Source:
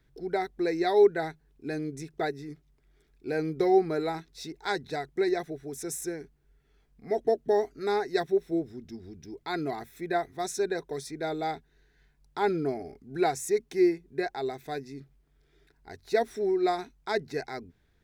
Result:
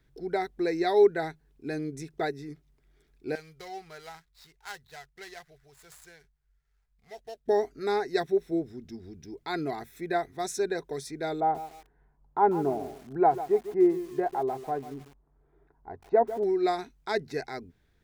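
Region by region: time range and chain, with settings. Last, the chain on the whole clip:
3.35–7.48 s: median filter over 15 samples + amplifier tone stack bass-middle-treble 10-0-10
11.40–16.44 s: resonant low-pass 950 Hz, resonance Q 2.5 + bit-crushed delay 146 ms, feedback 35%, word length 7-bit, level -13 dB
whole clip: none

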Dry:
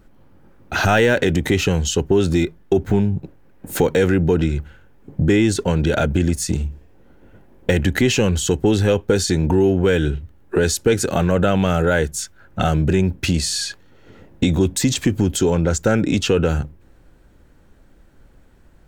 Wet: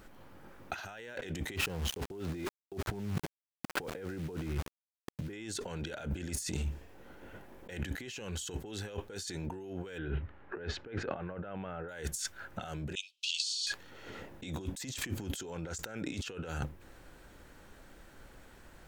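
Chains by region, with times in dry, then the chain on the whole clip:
1.56–5.33 s: tape spacing loss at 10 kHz 41 dB + small samples zeroed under -33 dBFS
9.98–11.89 s: Bessel low-pass 1.7 kHz, order 4 + tape noise reduction on one side only encoder only
12.95–13.67 s: steep high-pass 2.8 kHz 72 dB/octave + distance through air 110 m
whole clip: bass shelf 430 Hz -11.5 dB; compressor with a negative ratio -35 dBFS, ratio -1; trim -4.5 dB

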